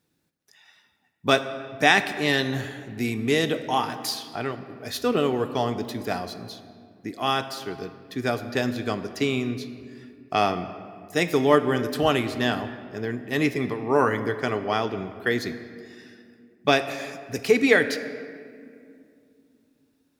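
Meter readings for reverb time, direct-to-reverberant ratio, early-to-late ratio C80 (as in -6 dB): 2.4 s, 10.0 dB, 12.0 dB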